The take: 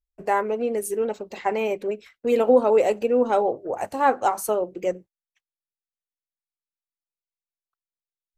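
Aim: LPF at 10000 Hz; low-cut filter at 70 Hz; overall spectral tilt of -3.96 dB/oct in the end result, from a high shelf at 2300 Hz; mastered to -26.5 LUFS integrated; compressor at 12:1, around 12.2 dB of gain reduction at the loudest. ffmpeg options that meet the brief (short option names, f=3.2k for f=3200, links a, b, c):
-af "highpass=70,lowpass=10k,highshelf=f=2.3k:g=-4.5,acompressor=threshold=-24dB:ratio=12,volume=3.5dB"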